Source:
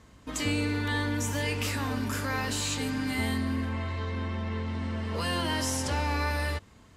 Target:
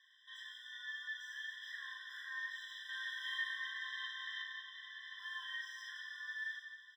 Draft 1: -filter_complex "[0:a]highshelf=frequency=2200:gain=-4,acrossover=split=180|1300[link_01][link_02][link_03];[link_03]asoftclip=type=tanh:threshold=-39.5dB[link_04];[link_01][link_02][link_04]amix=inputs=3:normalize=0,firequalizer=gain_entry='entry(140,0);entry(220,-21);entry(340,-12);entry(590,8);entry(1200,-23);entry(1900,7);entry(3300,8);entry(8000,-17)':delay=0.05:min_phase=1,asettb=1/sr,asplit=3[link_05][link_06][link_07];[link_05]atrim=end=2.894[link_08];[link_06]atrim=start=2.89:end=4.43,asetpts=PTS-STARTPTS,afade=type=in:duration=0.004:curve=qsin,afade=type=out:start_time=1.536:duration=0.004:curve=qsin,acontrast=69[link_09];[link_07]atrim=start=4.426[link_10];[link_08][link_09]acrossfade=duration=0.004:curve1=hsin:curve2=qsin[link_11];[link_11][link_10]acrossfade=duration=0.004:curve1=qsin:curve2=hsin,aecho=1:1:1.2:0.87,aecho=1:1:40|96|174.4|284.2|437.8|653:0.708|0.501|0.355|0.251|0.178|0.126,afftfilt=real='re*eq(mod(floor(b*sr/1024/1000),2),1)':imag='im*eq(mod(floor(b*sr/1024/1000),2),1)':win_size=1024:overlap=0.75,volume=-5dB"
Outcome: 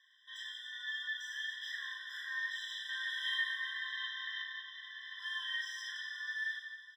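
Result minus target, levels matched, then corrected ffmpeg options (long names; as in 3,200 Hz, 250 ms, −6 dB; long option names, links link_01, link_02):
soft clipping: distortion −6 dB
-filter_complex "[0:a]highshelf=frequency=2200:gain=-4,acrossover=split=180|1300[link_01][link_02][link_03];[link_03]asoftclip=type=tanh:threshold=-50dB[link_04];[link_01][link_02][link_04]amix=inputs=3:normalize=0,firequalizer=gain_entry='entry(140,0);entry(220,-21);entry(340,-12);entry(590,8);entry(1200,-23);entry(1900,7);entry(3300,8);entry(8000,-17)':delay=0.05:min_phase=1,asettb=1/sr,asplit=3[link_05][link_06][link_07];[link_05]atrim=end=2.894[link_08];[link_06]atrim=start=2.89:end=4.43,asetpts=PTS-STARTPTS,afade=type=in:duration=0.004:curve=qsin,afade=type=out:start_time=1.536:duration=0.004:curve=qsin,acontrast=69[link_09];[link_07]atrim=start=4.426[link_10];[link_08][link_09]acrossfade=duration=0.004:curve1=hsin:curve2=qsin[link_11];[link_11][link_10]acrossfade=duration=0.004:curve1=qsin:curve2=hsin,aecho=1:1:1.2:0.87,aecho=1:1:40|96|174.4|284.2|437.8|653:0.708|0.501|0.355|0.251|0.178|0.126,afftfilt=real='re*eq(mod(floor(b*sr/1024/1000),2),1)':imag='im*eq(mod(floor(b*sr/1024/1000),2),1)':win_size=1024:overlap=0.75,volume=-5dB"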